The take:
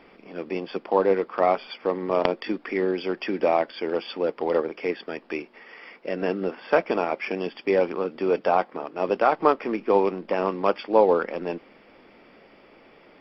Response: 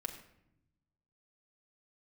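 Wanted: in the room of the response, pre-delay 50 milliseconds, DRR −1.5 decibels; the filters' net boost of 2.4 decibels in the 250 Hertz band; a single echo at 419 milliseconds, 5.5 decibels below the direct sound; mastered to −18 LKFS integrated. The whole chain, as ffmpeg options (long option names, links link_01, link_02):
-filter_complex "[0:a]equalizer=frequency=250:width_type=o:gain=3.5,aecho=1:1:419:0.531,asplit=2[link_01][link_02];[1:a]atrim=start_sample=2205,adelay=50[link_03];[link_02][link_03]afir=irnorm=-1:irlink=0,volume=2dB[link_04];[link_01][link_04]amix=inputs=2:normalize=0,volume=0.5dB"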